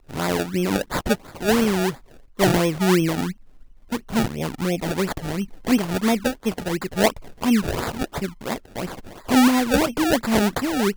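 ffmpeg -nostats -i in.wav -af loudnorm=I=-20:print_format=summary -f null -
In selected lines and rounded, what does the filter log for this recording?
Input Integrated:    -22.0 LUFS
Input True Peak:      -5.0 dBTP
Input LRA:             2.9 LU
Input Threshold:     -32.4 LUFS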